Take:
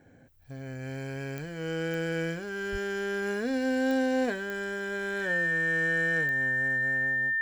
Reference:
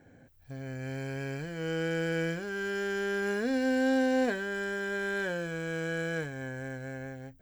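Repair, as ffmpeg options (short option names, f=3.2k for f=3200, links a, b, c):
-filter_complex "[0:a]adeclick=t=4,bandreject=f=1.8k:w=30,asplit=3[a][b][c];[a]afade=t=out:st=2.71:d=0.02[d];[b]highpass=f=140:w=0.5412,highpass=f=140:w=1.3066,afade=t=in:st=2.71:d=0.02,afade=t=out:st=2.83:d=0.02[e];[c]afade=t=in:st=2.83:d=0.02[f];[d][e][f]amix=inputs=3:normalize=0"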